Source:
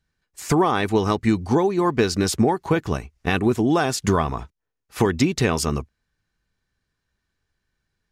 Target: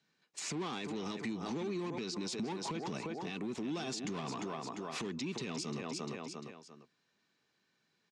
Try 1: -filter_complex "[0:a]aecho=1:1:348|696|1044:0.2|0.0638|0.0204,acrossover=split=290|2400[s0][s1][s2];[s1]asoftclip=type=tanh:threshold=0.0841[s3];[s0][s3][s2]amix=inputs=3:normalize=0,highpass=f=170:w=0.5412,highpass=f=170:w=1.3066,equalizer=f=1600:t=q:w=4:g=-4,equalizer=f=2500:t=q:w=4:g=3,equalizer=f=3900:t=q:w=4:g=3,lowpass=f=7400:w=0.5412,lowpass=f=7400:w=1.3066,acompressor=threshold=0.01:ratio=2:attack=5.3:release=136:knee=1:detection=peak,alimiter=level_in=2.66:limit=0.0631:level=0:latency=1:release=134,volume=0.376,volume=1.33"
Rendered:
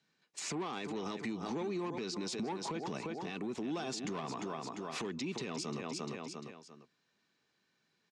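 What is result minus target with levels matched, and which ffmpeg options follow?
saturation: distortion -6 dB
-filter_complex "[0:a]aecho=1:1:348|696|1044:0.2|0.0638|0.0204,acrossover=split=290|2400[s0][s1][s2];[s1]asoftclip=type=tanh:threshold=0.0316[s3];[s0][s3][s2]amix=inputs=3:normalize=0,highpass=f=170:w=0.5412,highpass=f=170:w=1.3066,equalizer=f=1600:t=q:w=4:g=-4,equalizer=f=2500:t=q:w=4:g=3,equalizer=f=3900:t=q:w=4:g=3,lowpass=f=7400:w=0.5412,lowpass=f=7400:w=1.3066,acompressor=threshold=0.01:ratio=2:attack=5.3:release=136:knee=1:detection=peak,alimiter=level_in=2.66:limit=0.0631:level=0:latency=1:release=134,volume=0.376,volume=1.33"

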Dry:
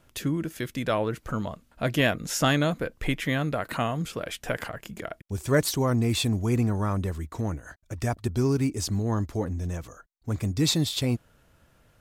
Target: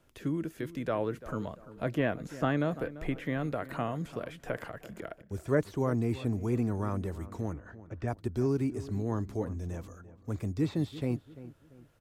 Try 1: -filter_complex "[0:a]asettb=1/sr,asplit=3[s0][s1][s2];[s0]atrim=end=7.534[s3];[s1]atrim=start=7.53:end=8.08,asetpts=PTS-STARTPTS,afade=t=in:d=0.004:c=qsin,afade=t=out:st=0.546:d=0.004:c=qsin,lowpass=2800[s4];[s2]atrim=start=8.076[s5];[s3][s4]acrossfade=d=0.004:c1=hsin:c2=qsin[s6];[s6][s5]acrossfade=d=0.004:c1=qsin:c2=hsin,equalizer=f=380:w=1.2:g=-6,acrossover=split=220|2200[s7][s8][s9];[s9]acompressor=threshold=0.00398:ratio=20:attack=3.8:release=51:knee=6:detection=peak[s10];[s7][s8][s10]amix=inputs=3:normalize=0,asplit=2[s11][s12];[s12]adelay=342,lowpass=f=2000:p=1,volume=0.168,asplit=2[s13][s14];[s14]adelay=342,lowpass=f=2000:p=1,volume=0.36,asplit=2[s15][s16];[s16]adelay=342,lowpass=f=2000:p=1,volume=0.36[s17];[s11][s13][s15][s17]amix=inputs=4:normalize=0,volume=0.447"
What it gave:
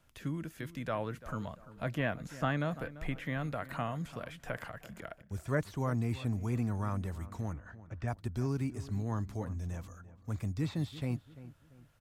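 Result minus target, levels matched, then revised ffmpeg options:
500 Hz band -3.0 dB
-filter_complex "[0:a]asettb=1/sr,asplit=3[s0][s1][s2];[s0]atrim=end=7.534[s3];[s1]atrim=start=7.53:end=8.08,asetpts=PTS-STARTPTS,afade=t=in:d=0.004:c=qsin,afade=t=out:st=0.546:d=0.004:c=qsin,lowpass=2800[s4];[s2]atrim=start=8.076[s5];[s3][s4]acrossfade=d=0.004:c1=hsin:c2=qsin[s6];[s6][s5]acrossfade=d=0.004:c1=qsin:c2=hsin,equalizer=f=380:w=1.2:g=4,acrossover=split=220|2200[s7][s8][s9];[s9]acompressor=threshold=0.00398:ratio=20:attack=3.8:release=51:knee=6:detection=peak[s10];[s7][s8][s10]amix=inputs=3:normalize=0,asplit=2[s11][s12];[s12]adelay=342,lowpass=f=2000:p=1,volume=0.168,asplit=2[s13][s14];[s14]adelay=342,lowpass=f=2000:p=1,volume=0.36,asplit=2[s15][s16];[s16]adelay=342,lowpass=f=2000:p=1,volume=0.36[s17];[s11][s13][s15][s17]amix=inputs=4:normalize=0,volume=0.447"

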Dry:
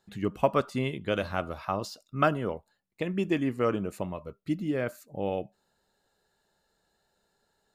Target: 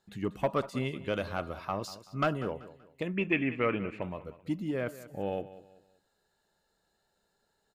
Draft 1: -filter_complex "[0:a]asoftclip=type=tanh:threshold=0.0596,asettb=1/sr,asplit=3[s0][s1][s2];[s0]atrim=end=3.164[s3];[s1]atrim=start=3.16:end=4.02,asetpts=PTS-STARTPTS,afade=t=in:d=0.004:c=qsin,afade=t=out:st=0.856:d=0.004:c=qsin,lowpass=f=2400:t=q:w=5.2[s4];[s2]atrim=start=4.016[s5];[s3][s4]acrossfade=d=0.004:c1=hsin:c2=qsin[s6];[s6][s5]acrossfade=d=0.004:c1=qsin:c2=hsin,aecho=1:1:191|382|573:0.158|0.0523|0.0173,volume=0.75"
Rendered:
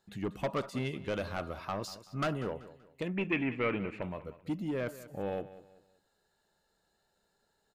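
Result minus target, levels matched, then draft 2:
saturation: distortion +7 dB
-filter_complex "[0:a]asoftclip=type=tanh:threshold=0.15,asettb=1/sr,asplit=3[s0][s1][s2];[s0]atrim=end=3.164[s3];[s1]atrim=start=3.16:end=4.02,asetpts=PTS-STARTPTS,afade=t=in:d=0.004:c=qsin,afade=t=out:st=0.856:d=0.004:c=qsin,lowpass=f=2400:t=q:w=5.2[s4];[s2]atrim=start=4.016[s5];[s3][s4]acrossfade=d=0.004:c1=hsin:c2=qsin[s6];[s6][s5]acrossfade=d=0.004:c1=qsin:c2=hsin,aecho=1:1:191|382|573:0.158|0.0523|0.0173,volume=0.75"

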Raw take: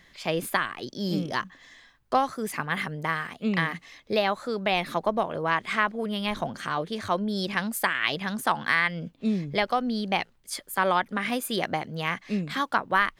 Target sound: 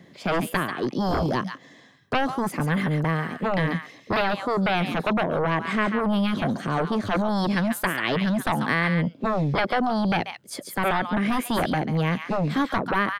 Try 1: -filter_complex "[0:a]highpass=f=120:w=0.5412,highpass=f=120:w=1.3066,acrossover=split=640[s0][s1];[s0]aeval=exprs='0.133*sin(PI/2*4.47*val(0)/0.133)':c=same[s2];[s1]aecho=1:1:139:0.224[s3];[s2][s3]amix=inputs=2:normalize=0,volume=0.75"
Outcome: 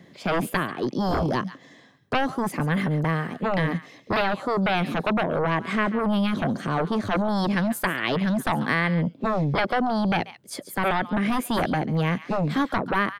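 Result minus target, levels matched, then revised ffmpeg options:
echo-to-direct -7.5 dB
-filter_complex "[0:a]highpass=f=120:w=0.5412,highpass=f=120:w=1.3066,acrossover=split=640[s0][s1];[s0]aeval=exprs='0.133*sin(PI/2*4.47*val(0)/0.133)':c=same[s2];[s1]aecho=1:1:139:0.531[s3];[s2][s3]amix=inputs=2:normalize=0,volume=0.75"

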